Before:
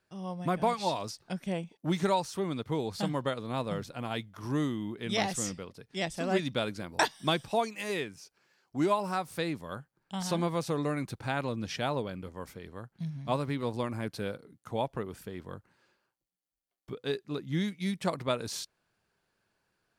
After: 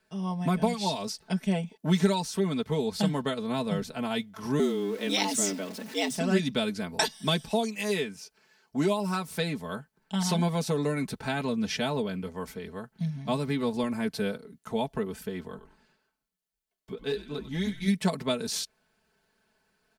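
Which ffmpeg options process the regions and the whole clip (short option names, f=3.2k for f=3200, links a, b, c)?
-filter_complex "[0:a]asettb=1/sr,asplit=3[a][b][c];[a]atrim=end=4.594[d];[b]atrim=start=4.59:end=6.17,asetpts=PTS-STARTPTS,afade=t=in:d=0.004:c=qsin,afade=t=out:st=1.576:d=0.004:c=qsin,aeval=exprs='val(0)+0.5*0.00631*sgn(val(0))':c=same,afreqshift=96[e];[c]atrim=start=6.166[f];[d][e]acrossfade=d=0.004:c1=hsin:c2=qsin[g];[g][f]acrossfade=d=0.004:c1=qsin:c2=hsin,asettb=1/sr,asplit=3[h][i][j];[h]atrim=end=15.474[k];[i]atrim=start=15.47:end=17.88,asetpts=PTS-STARTPTS,afade=t=in:d=0.004:c=qsin,afade=t=out:st=2.406:d=0.004:c=qsin,asoftclip=type=hard:threshold=-23.5dB,flanger=delay=2:depth=8.9:regen=-44:speed=1.7:shape=triangular,asplit=5[l][m][n][o][p];[m]adelay=96,afreqshift=-85,volume=-12dB[q];[n]adelay=192,afreqshift=-170,volume=-20.4dB[r];[o]adelay=288,afreqshift=-255,volume=-28.8dB[s];[p]adelay=384,afreqshift=-340,volume=-37.2dB[t];[l][q][r][s][t]amix=inputs=5:normalize=0,atrim=end_sample=106281[u];[j]atrim=start=17.876[v];[k][u]acrossfade=d=0.004:c1=hsin:c2=qsin[w];[w][v]acrossfade=d=0.004:c1=qsin:c2=hsin,bandreject=f=1.2k:w=9.2,aecho=1:1:4.6:0.75,acrossover=split=350|3000[x][y][z];[y]acompressor=threshold=-36dB:ratio=2.5[aa];[x][aa][z]amix=inputs=3:normalize=0,volume=4dB"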